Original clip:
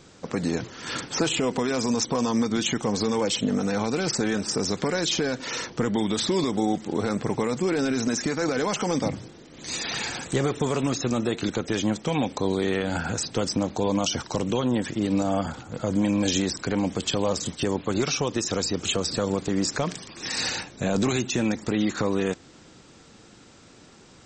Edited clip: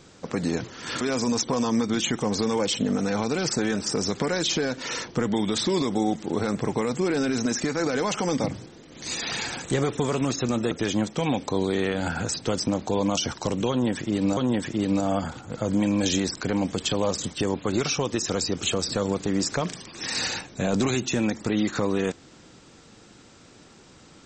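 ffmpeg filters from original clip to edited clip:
-filter_complex "[0:a]asplit=4[a][b][c][d];[a]atrim=end=1.012[e];[b]atrim=start=1.628:end=11.332[f];[c]atrim=start=11.598:end=15.262[g];[d]atrim=start=14.588[h];[e][f]acrossfade=d=0.004:c1=hsin:c2=hsin[i];[i][g]acrossfade=d=0.004:c1=hsin:c2=hsin[j];[j][h]acrossfade=d=0.004:c1=hsin:c2=hsin"

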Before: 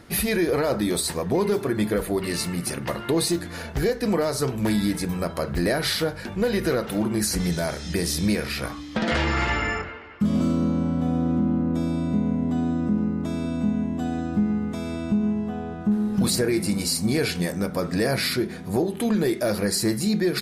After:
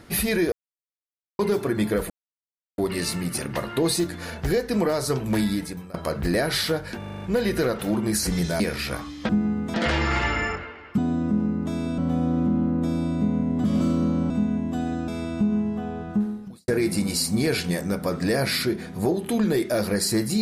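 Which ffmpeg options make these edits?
-filter_complex "[0:a]asplit=20[a][b][c][d][e][f][g][h][i][j][k][l][m][n][o][p][q][r][s][t];[a]atrim=end=0.52,asetpts=PTS-STARTPTS,afade=t=out:st=0.516:d=0.004:c=hsin[u];[b]atrim=start=0.52:end=1.39,asetpts=PTS-STARTPTS,volume=0[v];[c]atrim=start=1.39:end=2.1,asetpts=PTS-STARTPTS,afade=t=in:d=0.004:c=hsin,afade=t=out:st=0.706:d=0.004:c=hsin,apad=pad_dur=0.68[w];[d]atrim=start=2.1:end=5.26,asetpts=PTS-STARTPTS,afade=t=in:d=0.004:c=hsin,afade=t=out:st=2.62:d=0.54:silence=0.0891251[x];[e]atrim=start=5.26:end=6.342,asetpts=PTS-STARTPTS,afade=t=in:d=0.004:c=hsin:silence=0.0891251[y];[f]atrim=start=6.298:end=6.342[z];[g]atrim=start=6.298:end=6.342[aa];[h]atrim=start=6.298:end=6.342[ab];[i]atrim=start=6.298:end=6.342[ac];[j]atrim=start=6.298:end=6.342[ad];[k]atrim=start=6.298:end=7.682[ae];[l]atrim=start=8.308:end=9.002[af];[m]atrim=start=14.338:end=14.792[ag];[n]atrim=start=8.998:end=10.242[ah];[o]atrim=start=12.558:end=13.562[ai];[p]atrim=start=10.898:end=12.562[aj];[q]atrim=start=10.238:end=10.902[ak];[r]atrim=start=13.558:end=14.342[al];[s]atrim=start=14.788:end=16.39,asetpts=PTS-STARTPTS,afade=t=out:st=1.072:d=0.53:c=qua[am];[t]atrim=start=16.39,asetpts=PTS-STARTPTS,afade=t=in:d=0.004:c=hsin[an];[u][v][w][x][y]concat=n=5:v=0:a=1[ao];[ao][z]acrossfade=d=0.004:c1=hsin:c2=hsin[ap];[ap][aa]acrossfade=d=0.004:c1=hsin:c2=hsin[aq];[aq][ab]acrossfade=d=0.004:c1=hsin:c2=hsin[ar];[ar][ac]acrossfade=d=0.004:c1=hsin:c2=hsin[as];[as][ad]acrossfade=d=0.004:c1=hsin:c2=hsin[at];[at][ae]acrossfade=d=0.004:c1=hsin:c2=hsin[au];[au][af]acrossfade=d=0.004:c1=hsin:c2=hsin[av];[av][ag]acrossfade=d=0.004:c1=hsin:c2=hsin[aw];[aw][ah]acrossfade=d=0.004:c1=hsin:c2=hsin[ax];[ax][ai]acrossfade=d=0.004:c1=hsin:c2=hsin[ay];[ay][aj]acrossfade=d=0.004:c1=hsin:c2=hsin[az];[az][ak]acrossfade=d=0.004:c1=hsin:c2=hsin[ba];[ba][al]acrossfade=d=0.004:c1=hsin:c2=hsin[bb];[am][an]concat=n=2:v=0:a=1[bc];[bb][bc]acrossfade=d=0.004:c1=hsin:c2=hsin"

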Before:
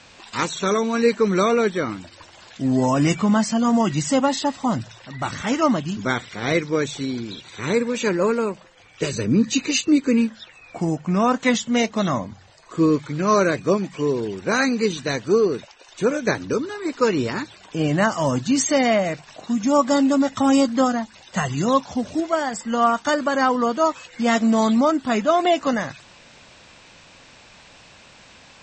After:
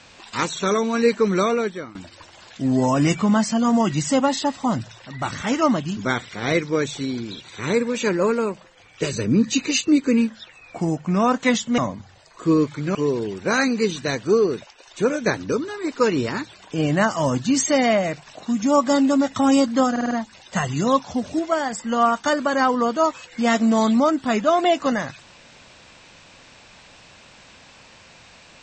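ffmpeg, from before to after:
-filter_complex "[0:a]asplit=8[a][b][c][d][e][f][g][h];[a]atrim=end=1.95,asetpts=PTS-STARTPTS,afade=t=out:st=1.14:d=0.81:c=qsin:silence=0.125893[i];[b]atrim=start=1.95:end=11.782,asetpts=PTS-STARTPTS,afade=t=in:d=0.004:c=hsin:silence=0.125893[j];[c]atrim=start=12.098:end=13.272[k];[d]atrim=start=13.958:end=20.972[l];[e]atrim=start=20.918:end=20.972[m];[f]atrim=start=20.918:end=20.972[n];[g]atrim=start=20.918:end=20.972[o];[h]atrim=start=20.918[p];[i][j]concat=n=2:v=0:a=1[q];[q][k]acrossfade=d=0.004:c1=hsin:c2=hsin[r];[r][l]acrossfade=d=0.004:c1=hsin:c2=hsin[s];[s][m]acrossfade=d=0.004:c1=hsin:c2=hsin[t];[t][n]acrossfade=d=0.004:c1=hsin:c2=hsin[u];[u][o]acrossfade=d=0.004:c1=hsin:c2=hsin[v];[v][p]acrossfade=d=0.004:c1=hsin:c2=hsin"

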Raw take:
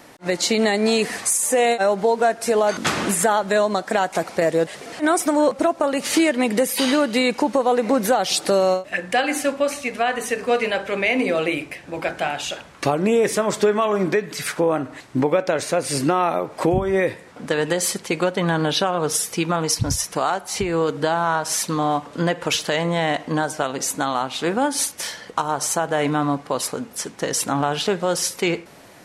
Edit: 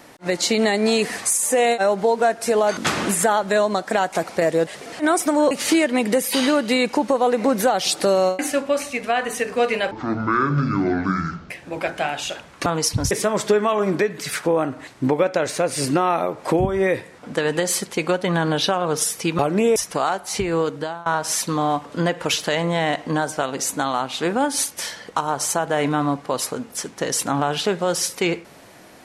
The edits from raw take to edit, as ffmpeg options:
-filter_complex "[0:a]asplit=10[a][b][c][d][e][f][g][h][i][j];[a]atrim=end=5.512[k];[b]atrim=start=5.958:end=8.842[l];[c]atrim=start=9.298:end=10.824[m];[d]atrim=start=10.82:end=11.71,asetpts=PTS-STARTPTS,asetrate=24696,aresample=44100[n];[e]atrim=start=11.706:end=12.872[o];[f]atrim=start=19.518:end=19.972[p];[g]atrim=start=13.238:end=19.522[q];[h]atrim=start=12.868:end=13.242[r];[i]atrim=start=19.968:end=21.27,asetpts=PTS-STARTPTS,afade=t=out:st=0.832:d=0.47:silence=0.0749894[s];[j]atrim=start=21.27,asetpts=PTS-STARTPTS,afade=t=in:d=0.004:c=hsin:silence=0.0749894[t];[k][l]acrossfade=d=0.004:c1=hsin:c2=hsin[u];[u][m]acrossfade=d=0.004:c1=hsin:c2=hsin[v];[v][n]acrossfade=d=0.004:c1=hsin:c2=hsin[w];[w][o]acrossfade=d=0.004:c1=hsin:c2=hsin[x];[x][p]acrossfade=d=0.004:c1=hsin:c2=hsin[y];[y][q]acrossfade=d=0.004:c1=hsin:c2=hsin[z];[z][r]acrossfade=d=0.004:c1=hsin:c2=hsin[aa];[s][t]concat=n=2:v=0:a=1[ab];[aa][ab]acrossfade=d=0.004:c1=hsin:c2=hsin"

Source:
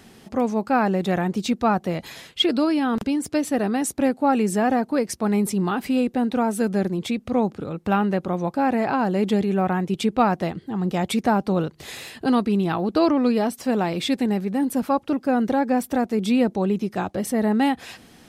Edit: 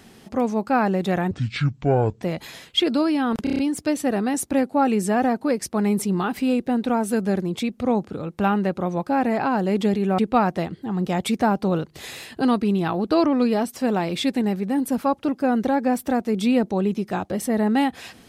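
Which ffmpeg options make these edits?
-filter_complex "[0:a]asplit=9[a][b][c][d][e][f][g][h][i];[a]atrim=end=1.314[j];[b]atrim=start=1.31:end=1.85,asetpts=PTS-STARTPTS,asetrate=26019,aresample=44100[k];[c]atrim=start=1.846:end=3.092[l];[d]atrim=start=3.058:end=3.092[m];[e]atrim=start=3.058:end=3.092[n];[f]atrim=start=3.058:end=3.092[o];[g]atrim=start=3.058:end=3.092[p];[h]atrim=start=3.058:end=9.662[q];[i]atrim=start=10.028[r];[j][k]acrossfade=d=0.004:c1=hsin:c2=hsin[s];[s][l]acrossfade=d=0.004:c1=hsin:c2=hsin[t];[t][m]acrossfade=d=0.004:c1=hsin:c2=hsin[u];[u][n]acrossfade=d=0.004:c1=hsin:c2=hsin[v];[v][o]acrossfade=d=0.004:c1=hsin:c2=hsin[w];[w][p]acrossfade=d=0.004:c1=hsin:c2=hsin[x];[x][q]acrossfade=d=0.004:c1=hsin:c2=hsin[y];[y][r]acrossfade=d=0.004:c1=hsin:c2=hsin"

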